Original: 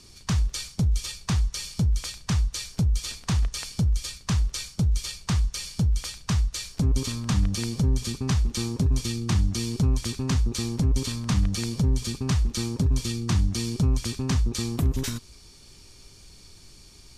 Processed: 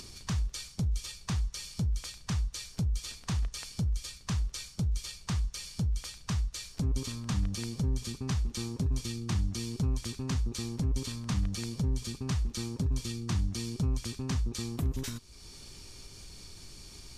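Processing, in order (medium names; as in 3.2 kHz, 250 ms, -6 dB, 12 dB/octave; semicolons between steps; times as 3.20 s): upward compressor, threshold -30 dBFS; trim -7.5 dB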